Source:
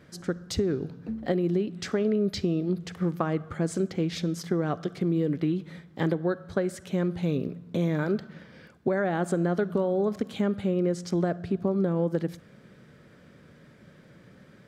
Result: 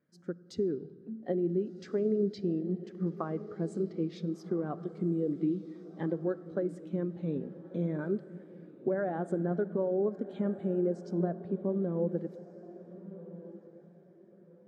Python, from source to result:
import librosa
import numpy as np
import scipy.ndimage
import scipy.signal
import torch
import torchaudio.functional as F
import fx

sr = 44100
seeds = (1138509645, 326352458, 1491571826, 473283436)

p1 = scipy.signal.sosfilt(scipy.signal.butter(2, 160.0, 'highpass', fs=sr, output='sos'), x)
p2 = fx.peak_eq(p1, sr, hz=1000.0, db=2.0, octaves=0.77)
p3 = p2 + fx.echo_diffused(p2, sr, ms=1468, feedback_pct=44, wet_db=-10.5, dry=0)
p4 = fx.rev_freeverb(p3, sr, rt60_s=4.2, hf_ratio=0.5, predelay_ms=35, drr_db=12.5)
p5 = fx.spectral_expand(p4, sr, expansion=1.5)
y = p5 * librosa.db_to_amplitude(-6.0)